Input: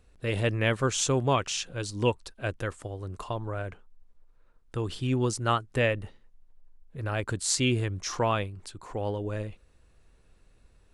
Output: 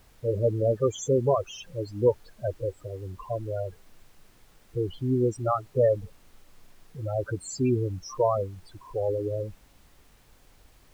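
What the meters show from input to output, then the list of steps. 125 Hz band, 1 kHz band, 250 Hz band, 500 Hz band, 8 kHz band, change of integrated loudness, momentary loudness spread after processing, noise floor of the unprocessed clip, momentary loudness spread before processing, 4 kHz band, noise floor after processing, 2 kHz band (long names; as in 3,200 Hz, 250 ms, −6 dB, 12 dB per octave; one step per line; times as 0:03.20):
−0.5 dB, −2.0 dB, +0.5 dB, +5.5 dB, −9.5 dB, +1.0 dB, 14 LU, −61 dBFS, 13 LU, −12.0 dB, −58 dBFS, −16.5 dB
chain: dynamic equaliser 540 Hz, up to +7 dB, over −41 dBFS, Q 0.92
spectral peaks only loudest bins 8
background noise pink −60 dBFS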